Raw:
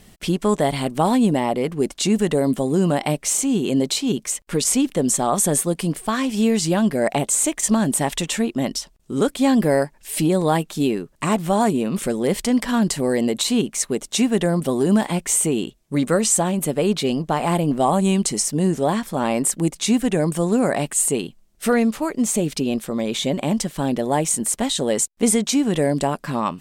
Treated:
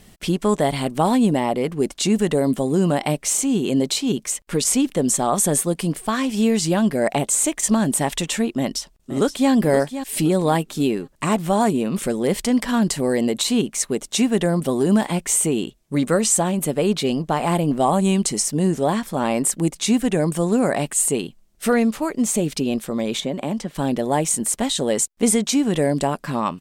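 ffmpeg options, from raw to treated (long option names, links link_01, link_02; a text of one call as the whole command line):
ffmpeg -i in.wav -filter_complex "[0:a]asplit=2[link_01][link_02];[link_02]afade=type=in:start_time=8.56:duration=0.01,afade=type=out:start_time=9.51:duration=0.01,aecho=0:1:520|1040|1560:0.281838|0.0845515|0.0253654[link_03];[link_01][link_03]amix=inputs=2:normalize=0,asettb=1/sr,asplit=3[link_04][link_05][link_06];[link_04]atrim=end=23.204[link_07];[link_05]atrim=start=23.2:end=23.75,asetpts=PTS-STARTPTS,afade=type=in:duration=0.004:curve=qsin,afade=type=out:start_time=0.546:duration=0.004:curve=qsin,acrossover=split=150|2000|5300[link_08][link_09][link_10][link_11];[link_08]acompressor=threshold=-44dB:ratio=3[link_12];[link_09]acompressor=threshold=-22dB:ratio=3[link_13];[link_10]acompressor=threshold=-42dB:ratio=3[link_14];[link_11]acompressor=threshold=-49dB:ratio=3[link_15];[link_12][link_13][link_14][link_15]amix=inputs=4:normalize=0[link_16];[link_06]atrim=start=23.746[link_17];[link_07][link_16]acrossfade=duration=0.004:curve1=hsin:curve2=qsin[link_18];[link_18][link_17]acrossfade=duration=0.004:curve1=qsin:curve2=hsin" out.wav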